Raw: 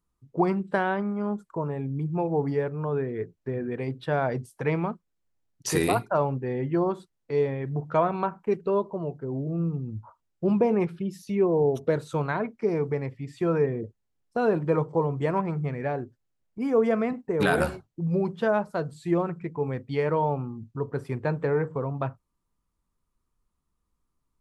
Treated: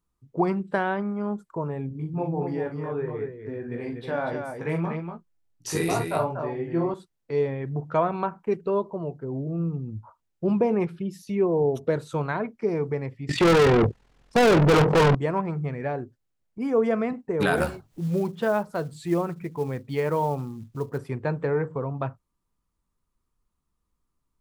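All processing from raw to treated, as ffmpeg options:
-filter_complex "[0:a]asettb=1/sr,asplit=3[s0][s1][s2];[s0]atrim=end=1.894[s3];[s1]atrim=start=1.89:end=6.94,asetpts=PTS-STARTPTS,afade=t=in:d=0.004:c=qsin,afade=t=out:st=5.046:d=0.004:c=qsin,flanger=delay=17:depth=2.3:speed=2.7,aecho=1:1:42|241:0.473|0.531,atrim=end_sample=222705[s4];[s2]atrim=start=6.936[s5];[s3][s4]acrossfade=d=0.004:c1=hsin:c2=qsin[s6];[s6][s5]acrossfade=d=0.004:c1=qsin:c2=hsin,asettb=1/sr,asplit=3[s7][s8][s9];[s7]atrim=end=13.294[s10];[s8]atrim=start=13.29:end=15.15,asetpts=PTS-STARTPTS,afade=t=in:d=0.004:c=qsin,afade=t=out:st=1.856:d=0.004:c=qsin,aemphasis=mode=reproduction:type=bsi,tremolo=f=42:d=0.71,asplit=2[s11][s12];[s12]highpass=f=720:p=1,volume=79.4,asoftclip=type=tanh:threshold=0.282[s13];[s11][s13]amix=inputs=2:normalize=0,lowpass=f=5500:p=1,volume=0.501[s14];[s9]atrim=start=15.146[s15];[s10][s14]acrossfade=d=0.004:c1=hsin:c2=qsin[s16];[s16][s15]acrossfade=d=0.004:c1=qsin:c2=hsin,asettb=1/sr,asplit=3[s17][s18][s19];[s17]atrim=end=17.564[s20];[s18]atrim=start=17.56:end=20.98,asetpts=PTS-STARTPTS,afade=t=in:d=0.004:c=qsin,afade=t=out:st=3.416:d=0.004:c=qsin,acompressor=mode=upward:threshold=0.0178:ratio=2.5:attack=3.2:release=140:knee=2.83:detection=peak,acrusher=bits=7:mode=log:mix=0:aa=0.000001[s21];[s19]atrim=start=20.976[s22];[s20][s21]acrossfade=d=0.004:c1=hsin:c2=qsin[s23];[s23][s22]acrossfade=d=0.004:c1=qsin:c2=hsin"

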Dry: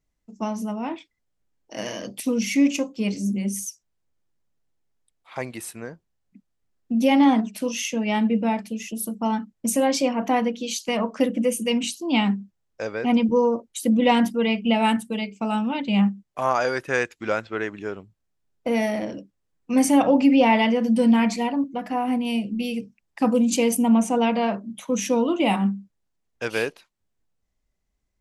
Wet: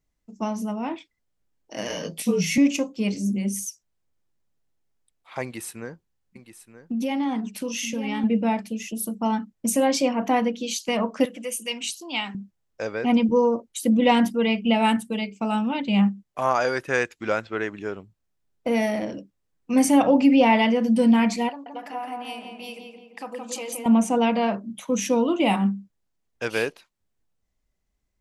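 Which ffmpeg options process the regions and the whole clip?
-filter_complex "[0:a]asettb=1/sr,asplit=3[s0][s1][s2];[s0]atrim=end=1.884[s3];[s1]atrim=start=1.88:end=2.58,asetpts=PTS-STARTPTS,afade=t=in:d=0.004:c=qsin,afade=t=out:st=0.696:d=0.004:c=qsin,highpass=160,asplit=2[s4][s5];[s5]adelay=19,volume=0.75[s6];[s4][s6]amix=inputs=2:normalize=0,atrim=end_sample=30870,afreqshift=-36[s7];[s2]atrim=start=2.576[s8];[s3][s7]acrossfade=d=0.004:c1=hsin:c2=qsin[s9];[s9][s8]acrossfade=d=0.004:c1=qsin:c2=hsin,asettb=1/sr,asplit=3[s10][s11][s12];[s10]atrim=end=5.434[s13];[s11]atrim=start=5.43:end=8.24,asetpts=PTS-STARTPTS,afade=t=in:d=0.004:c=qsin,afade=t=out:st=2.806:d=0.004:c=qsin,bandreject=f=650:w=6.2,aecho=1:1:925:0.237,atrim=end_sample=123921,acompressor=threshold=0.0562:ratio=3:attack=3.2:release=140:knee=1:detection=peak[s14];[s12]atrim=start=8.236[s15];[s13][s14]acrossfade=d=0.004:c1=hsin:c2=qsin[s16];[s16][s15]acrossfade=d=0.004:c1=qsin:c2=hsin,asettb=1/sr,asplit=3[s17][s18][s19];[s17]atrim=end=11.254[s20];[s18]atrim=start=11.25:end=12.35,asetpts=PTS-STARTPTS,afade=t=in:d=0.004:c=qsin,afade=t=out:st=1.096:d=0.004:c=qsin,highpass=f=1500:p=1,acompressor=mode=upward:threshold=0.0224:ratio=2.5:attack=3.2:release=140:knee=2.83:detection=peak[s21];[s19]atrim=start=12.346[s22];[s20][s21]acrossfade=d=0.004:c1=hsin:c2=qsin[s23];[s23][s22]acrossfade=d=0.004:c1=qsin:c2=hsin,asettb=1/sr,asplit=3[s24][s25][s26];[s24]atrim=end=21.494[s27];[s25]atrim=start=21.49:end=23.86,asetpts=PTS-STARTPTS,afade=t=in:d=0.004:c=qsin,afade=t=out:st=2.366:d=0.004:c=qsin,acompressor=threshold=0.0355:ratio=2.5:attack=3.2:release=140:knee=1:detection=peak,highpass=530,asplit=2[s28][s29];[s29]adelay=170,lowpass=f=2200:p=1,volume=0.708,asplit=2[s30][s31];[s31]adelay=170,lowpass=f=2200:p=1,volume=0.54,asplit=2[s32][s33];[s33]adelay=170,lowpass=f=2200:p=1,volume=0.54,asplit=2[s34][s35];[s35]adelay=170,lowpass=f=2200:p=1,volume=0.54,asplit=2[s36][s37];[s37]adelay=170,lowpass=f=2200:p=1,volume=0.54,asplit=2[s38][s39];[s39]adelay=170,lowpass=f=2200:p=1,volume=0.54,asplit=2[s40][s41];[s41]adelay=170,lowpass=f=2200:p=1,volume=0.54[s42];[s28][s30][s32][s34][s36][s38][s40][s42]amix=inputs=8:normalize=0,atrim=end_sample=104517[s43];[s26]atrim=start=23.856[s44];[s27][s43]acrossfade=d=0.004:c1=hsin:c2=qsin[s45];[s45][s44]acrossfade=d=0.004:c1=qsin:c2=hsin"

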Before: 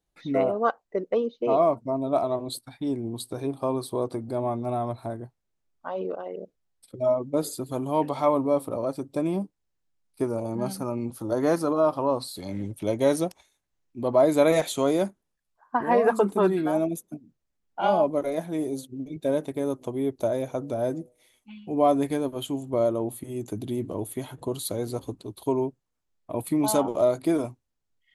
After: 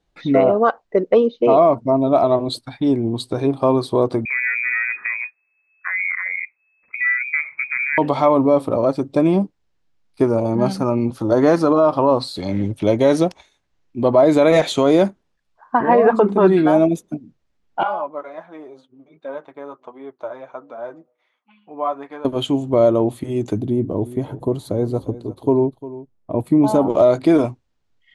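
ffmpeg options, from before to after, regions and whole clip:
-filter_complex "[0:a]asettb=1/sr,asplit=3[s0][s1][s2];[s0]atrim=end=4.254[s3];[s1]atrim=start=4.25:end=7.98,asetpts=PTS-STARTPTS,afade=t=in:d=0.004:c=qsin,afade=t=out:st=3.726:d=0.004:c=qsin,acompressor=threshold=0.0316:ratio=2.5:attack=3.2:release=140:knee=1:detection=peak,lowpass=f=2200:t=q:w=0.5098,lowpass=f=2200:t=q:w=0.6013,lowpass=f=2200:t=q:w=0.9,lowpass=f=2200:t=q:w=2.563,afreqshift=-2600[s4];[s2]atrim=start=7.976[s5];[s3][s4]acrossfade=d=0.004:c1=hsin:c2=qsin[s6];[s6][s5]acrossfade=d=0.004:c1=qsin:c2=hsin,asettb=1/sr,asplit=3[s7][s8][s9];[s7]atrim=end=15.804[s10];[s8]atrim=start=15.8:end=16.47,asetpts=PTS-STARTPTS,afade=t=in:d=0.004:c=qsin,afade=t=out:st=0.666:d=0.004:c=qsin,lowpass=f=2200:p=1,bandreject=f=50:t=h:w=6,bandreject=f=100:t=h:w=6,bandreject=f=150:t=h:w=6,bandreject=f=200:t=h:w=6,bandreject=f=250:t=h:w=6,bandreject=f=300:t=h:w=6,bandreject=f=350:t=h:w=6,bandreject=f=400:t=h:w=6[s11];[s9]atrim=start=16.466[s12];[s10][s11]acrossfade=d=0.004:c1=hsin:c2=qsin[s13];[s13][s12]acrossfade=d=0.004:c1=qsin:c2=hsin,asettb=1/sr,asplit=3[s14][s15][s16];[s14]atrim=end=17.834[s17];[s15]atrim=start=17.83:end=22.25,asetpts=PTS-STARTPTS,afade=t=in:d=0.004:c=qsin,afade=t=out:st=4.416:d=0.004:c=qsin,bandpass=f=1200:t=q:w=2.2,flanger=delay=3.6:depth=3.6:regen=-45:speed=1.4:shape=triangular[s18];[s16]atrim=start=22.246[s19];[s17][s18]acrossfade=d=0.004:c1=hsin:c2=qsin[s20];[s20][s19]acrossfade=d=0.004:c1=qsin:c2=hsin,asettb=1/sr,asplit=3[s21][s22][s23];[s21]atrim=end=23.604[s24];[s22]atrim=start=23.6:end=26.9,asetpts=PTS-STARTPTS,afade=t=in:d=0.004:c=qsin,afade=t=out:st=3.296:d=0.004:c=qsin,equalizer=f=3700:w=0.34:g=-14.5,aecho=1:1:351:0.15,atrim=end_sample=145530[s25];[s23]atrim=start=26.896[s26];[s24][s25]acrossfade=d=0.004:c1=hsin:c2=qsin[s27];[s27][s26]acrossfade=d=0.004:c1=qsin:c2=hsin,lowpass=4900,alimiter=level_in=5.31:limit=0.891:release=50:level=0:latency=1,volume=0.668"

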